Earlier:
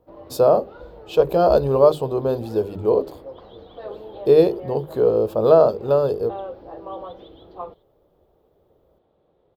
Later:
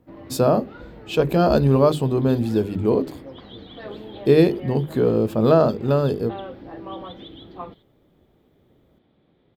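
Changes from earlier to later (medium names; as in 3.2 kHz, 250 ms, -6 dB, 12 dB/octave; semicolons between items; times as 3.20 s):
second sound +5.5 dB; master: add ten-band graphic EQ 125 Hz +6 dB, 250 Hz +11 dB, 500 Hz -7 dB, 1 kHz -3 dB, 2 kHz +11 dB, 8 kHz +6 dB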